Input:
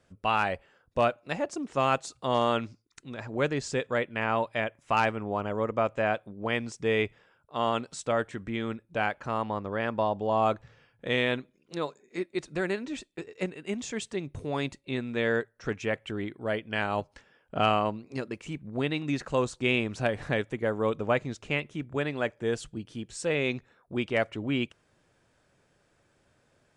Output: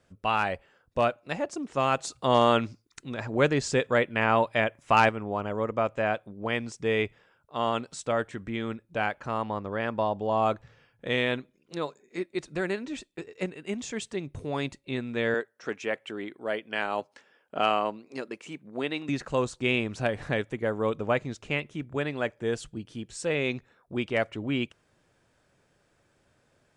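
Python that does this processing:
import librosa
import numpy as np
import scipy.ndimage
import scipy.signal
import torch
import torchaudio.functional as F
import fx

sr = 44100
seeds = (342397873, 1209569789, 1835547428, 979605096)

y = fx.highpass(x, sr, hz=270.0, slope=12, at=(15.34, 19.09))
y = fx.edit(y, sr, fx.clip_gain(start_s=1.99, length_s=3.1, db=4.5), tone=tone)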